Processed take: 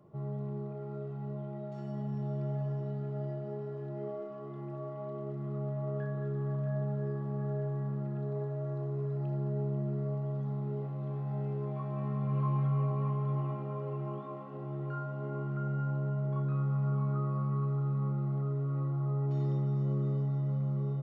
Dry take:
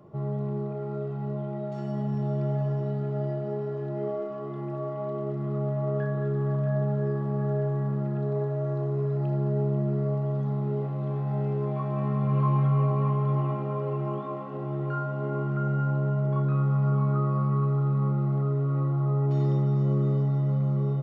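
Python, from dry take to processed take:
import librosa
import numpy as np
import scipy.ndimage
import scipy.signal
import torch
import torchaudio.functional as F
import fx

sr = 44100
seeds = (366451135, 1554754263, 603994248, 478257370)

y = fx.peak_eq(x, sr, hz=150.0, db=2.0, octaves=0.77)
y = y * 10.0 ** (-8.5 / 20.0)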